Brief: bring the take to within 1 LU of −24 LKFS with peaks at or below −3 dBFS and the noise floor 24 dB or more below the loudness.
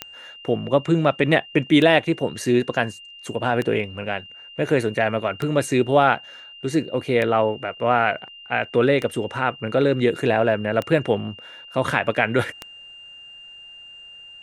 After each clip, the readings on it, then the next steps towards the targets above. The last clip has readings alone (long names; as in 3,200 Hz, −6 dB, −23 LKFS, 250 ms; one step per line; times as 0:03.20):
number of clicks 9; interfering tone 2,800 Hz; level of the tone −40 dBFS; integrated loudness −21.5 LKFS; sample peak −2.5 dBFS; target loudness −24.0 LKFS
→ click removal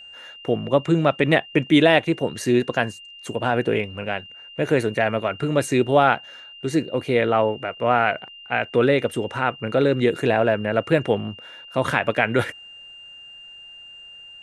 number of clicks 1; interfering tone 2,800 Hz; level of the tone −40 dBFS
→ notch filter 2,800 Hz, Q 30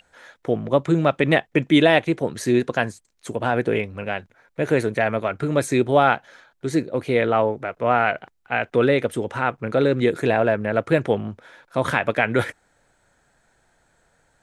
interfering tone none found; integrated loudness −21.5 LKFS; sample peak −2.5 dBFS; target loudness −24.0 LKFS
→ level −2.5 dB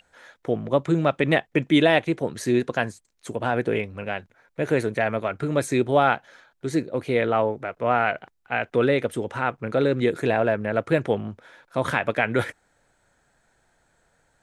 integrated loudness −24.0 LKFS; sample peak −5.0 dBFS; background noise floor −68 dBFS